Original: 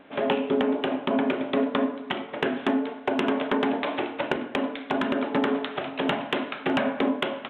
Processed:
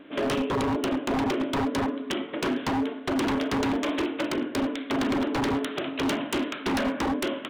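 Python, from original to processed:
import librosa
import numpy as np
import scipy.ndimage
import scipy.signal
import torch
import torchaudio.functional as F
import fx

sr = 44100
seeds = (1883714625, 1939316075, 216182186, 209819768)

y = fx.graphic_eq_31(x, sr, hz=(315, 800, 3150), db=(11, -9, 4))
y = 10.0 ** (-20.5 / 20.0) * (np.abs((y / 10.0 ** (-20.5 / 20.0) + 3.0) % 4.0 - 2.0) - 1.0)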